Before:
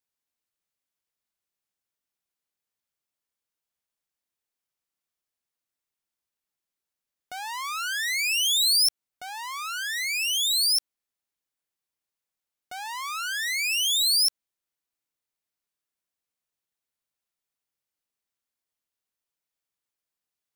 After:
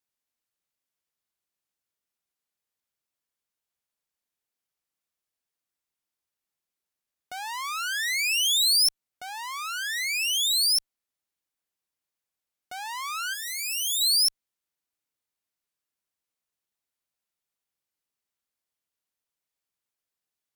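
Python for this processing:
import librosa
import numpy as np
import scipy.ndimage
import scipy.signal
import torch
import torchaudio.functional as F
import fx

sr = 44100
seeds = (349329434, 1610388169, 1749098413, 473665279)

y = fx.cheby_harmonics(x, sr, harmonics=(3, 4, 5, 7), levels_db=(-43, -41, -40, -42), full_scale_db=-15.0)
y = fx.pre_emphasis(y, sr, coefficient=0.8, at=(13.33, 14.0), fade=0.02)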